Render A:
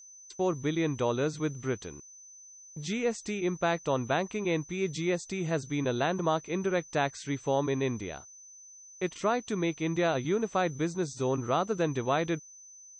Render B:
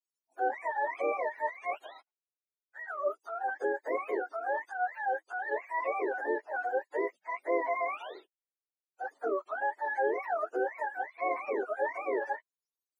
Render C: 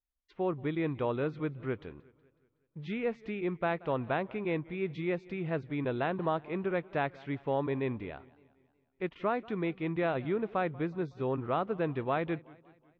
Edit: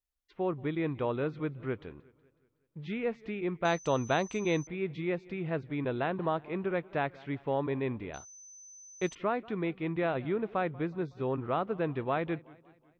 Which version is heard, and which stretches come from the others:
C
3.65–4.67 s: from A
8.14–9.15 s: from A
not used: B

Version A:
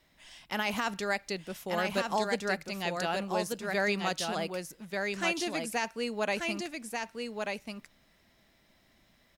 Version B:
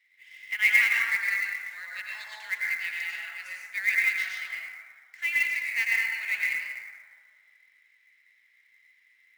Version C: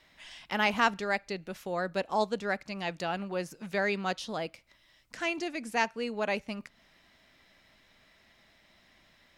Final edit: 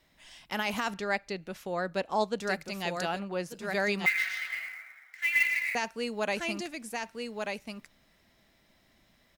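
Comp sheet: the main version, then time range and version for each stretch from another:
A
0.94–2.40 s: from C
3.14–3.56 s: from C, crossfade 0.16 s
4.06–5.75 s: from B

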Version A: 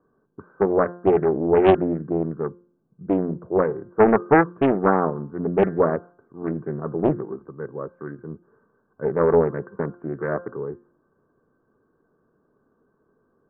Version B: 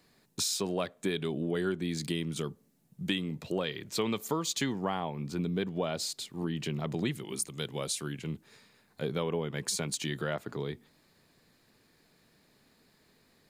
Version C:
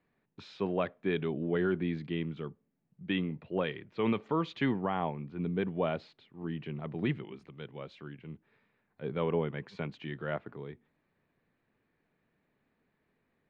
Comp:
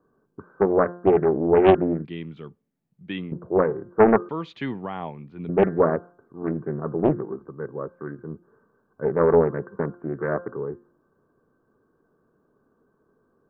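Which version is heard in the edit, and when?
A
2.05–3.32 s: from C
4.29–5.49 s: from C
not used: B

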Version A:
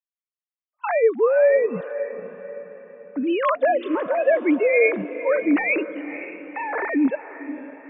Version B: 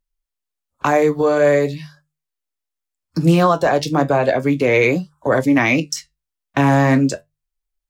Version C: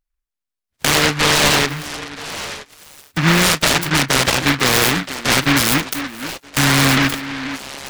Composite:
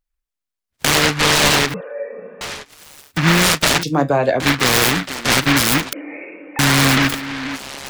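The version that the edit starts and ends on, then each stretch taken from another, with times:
C
1.74–2.41 s: from A
3.83–4.40 s: from B
5.93–6.59 s: from A

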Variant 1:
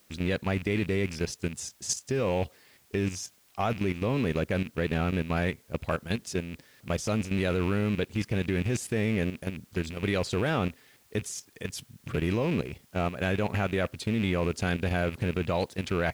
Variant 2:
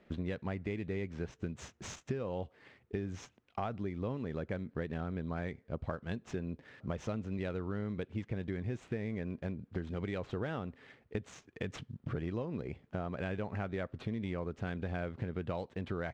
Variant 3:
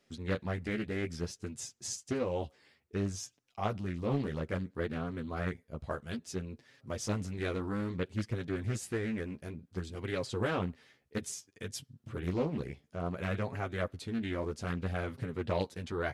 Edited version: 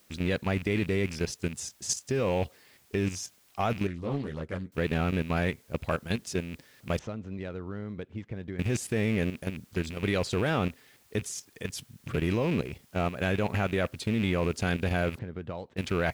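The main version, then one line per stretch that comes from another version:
1
3.87–4.72 s: from 3
6.99–8.59 s: from 2
15.19–15.77 s: from 2

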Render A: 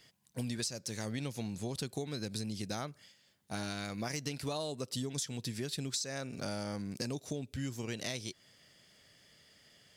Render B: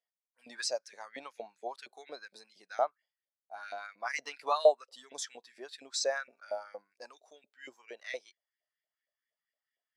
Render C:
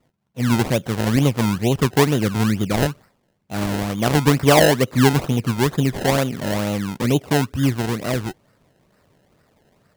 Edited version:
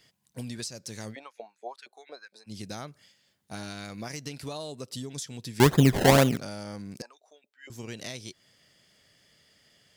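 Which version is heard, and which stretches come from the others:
A
1.13–2.49 s: from B, crossfade 0.06 s
5.60–6.37 s: from C
7.02–7.70 s: from B

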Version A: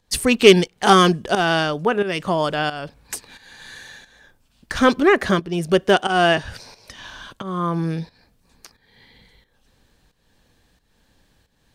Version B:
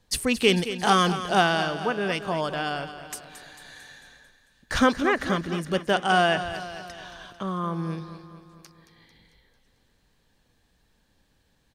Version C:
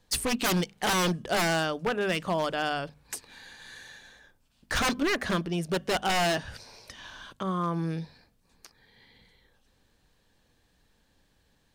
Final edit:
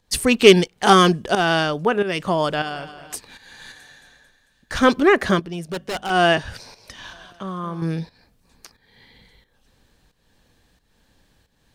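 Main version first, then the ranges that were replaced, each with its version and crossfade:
A
2.62–3.14 s: from B
3.72–4.83 s: from B
5.44–6.10 s: from C
7.13–7.82 s: from B

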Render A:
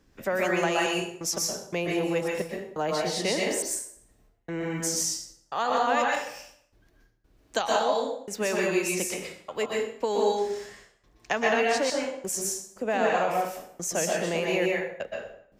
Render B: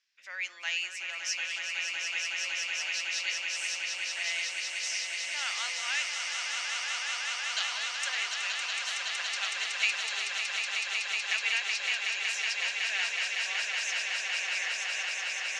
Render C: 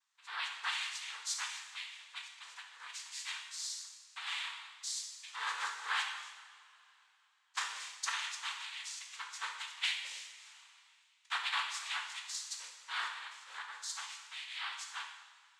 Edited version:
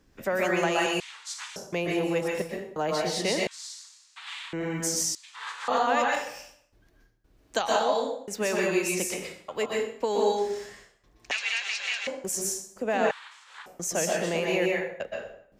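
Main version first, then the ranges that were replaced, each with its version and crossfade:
A
1.00–1.56 s: from C
3.47–4.53 s: from C
5.15–5.68 s: from C
11.31–12.07 s: from B
13.11–13.66 s: from C

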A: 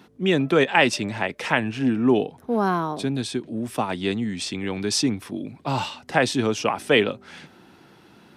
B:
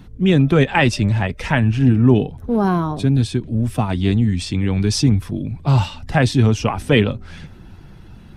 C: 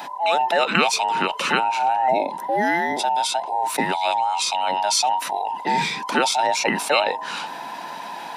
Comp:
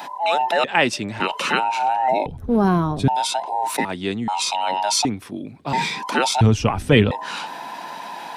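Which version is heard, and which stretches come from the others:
C
0.64–1.20 s: from A
2.26–3.08 s: from B
3.85–4.28 s: from A
5.05–5.73 s: from A
6.41–7.11 s: from B

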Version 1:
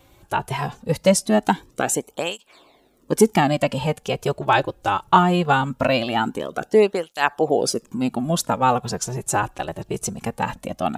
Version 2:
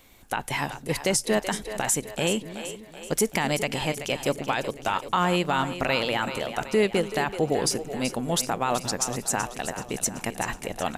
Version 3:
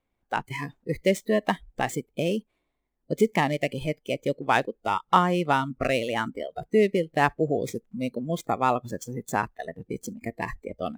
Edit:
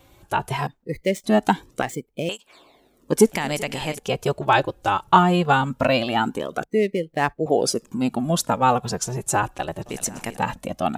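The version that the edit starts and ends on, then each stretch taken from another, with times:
1
0.67–1.24 s: from 3
1.82–2.29 s: from 3
3.26–3.99 s: from 2
6.64–7.46 s: from 3
9.86–10.37 s: from 2

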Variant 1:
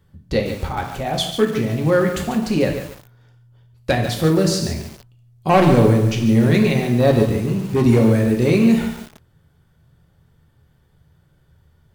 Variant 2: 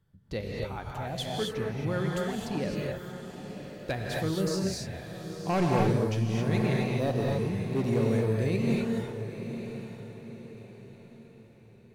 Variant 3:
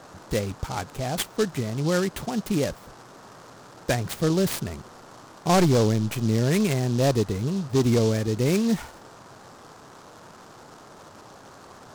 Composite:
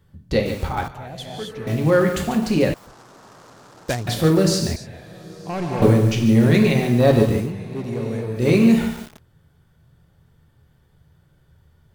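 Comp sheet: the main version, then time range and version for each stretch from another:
1
0.88–1.67 s: from 2
2.74–4.07 s: from 3
4.76–5.82 s: from 2
7.47–8.41 s: from 2, crossfade 0.16 s

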